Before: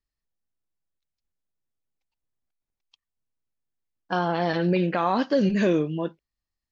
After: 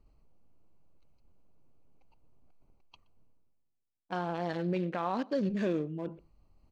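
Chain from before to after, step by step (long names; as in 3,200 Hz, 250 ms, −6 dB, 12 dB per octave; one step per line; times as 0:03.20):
adaptive Wiener filter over 25 samples
reversed playback
upward compression, threshold −26 dBFS
reversed playback
slap from a distant wall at 21 metres, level −24 dB
level −9 dB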